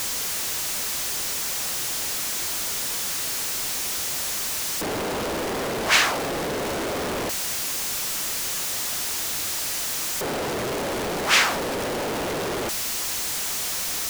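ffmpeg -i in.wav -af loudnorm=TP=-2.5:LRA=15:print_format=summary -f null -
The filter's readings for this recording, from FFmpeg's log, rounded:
Input Integrated:    -24.2 LUFS
Input True Peak:      -5.8 dBTP
Input LRA:             1.3 LU
Input Threshold:     -34.2 LUFS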